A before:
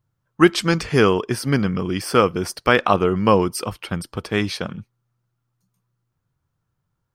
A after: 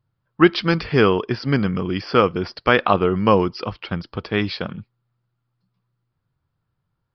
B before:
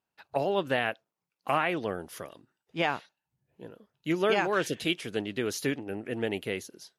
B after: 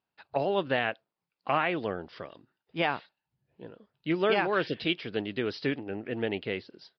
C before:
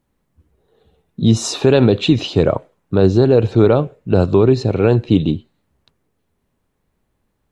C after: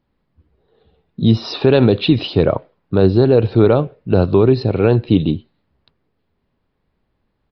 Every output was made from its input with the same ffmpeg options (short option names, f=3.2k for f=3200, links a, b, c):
-af "aresample=11025,aresample=44100"